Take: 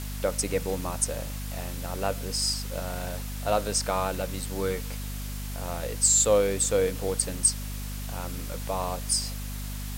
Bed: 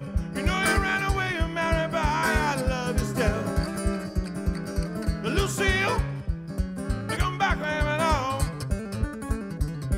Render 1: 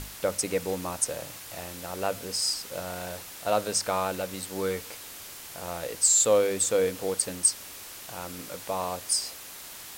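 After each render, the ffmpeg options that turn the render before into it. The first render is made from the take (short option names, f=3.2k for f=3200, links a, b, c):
-af "bandreject=f=50:t=h:w=6,bandreject=f=100:t=h:w=6,bandreject=f=150:t=h:w=6,bandreject=f=200:t=h:w=6,bandreject=f=250:t=h:w=6"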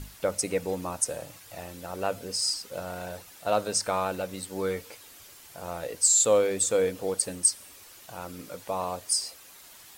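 -af "afftdn=nr=9:nf=-43"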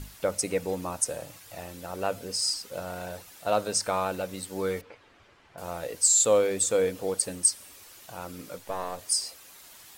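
-filter_complex "[0:a]asettb=1/sr,asplit=3[a][b][c];[a]atrim=end=4.814[d];[b]atrim=start=4.81:end=5.58,asetpts=PTS-STARTPTS,afade=t=in:d=0.004:c=qsin,afade=t=out:st=0.766:d=0.004:c=qsin,lowpass=2.1k[e];[c]atrim=start=5.576[f];[d][e]acrossfade=d=0.004:c1=hsin:c2=qsin[g];[g][f]acrossfade=d=0.004:c1=qsin:c2=hsin,asettb=1/sr,asplit=3[h][i][j];[h]atrim=end=8.584[k];[i]atrim=start=8.58:end=8.99,asetpts=PTS-STARTPTS,afade=t=in:d=0.004:c=qsin,afade=t=out:st=0.406:d=0.004:c=qsin,aeval=exprs='if(lt(val(0),0),0.447*val(0),val(0))':c=same[l];[j]atrim=start=8.986[m];[k][l]acrossfade=d=0.004:c1=hsin:c2=qsin[n];[n][m]acrossfade=d=0.004:c1=qsin:c2=hsin"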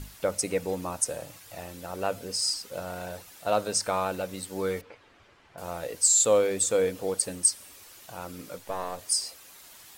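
-af anull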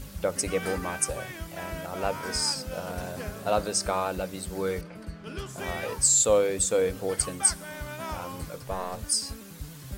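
-filter_complex "[1:a]volume=-12.5dB[a];[0:a][a]amix=inputs=2:normalize=0"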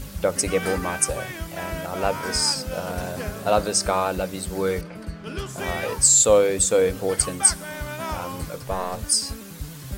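-af "volume=5.5dB"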